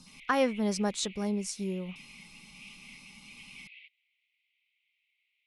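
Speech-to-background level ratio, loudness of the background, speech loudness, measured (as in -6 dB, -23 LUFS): 19.0 dB, -50.5 LUFS, -31.5 LUFS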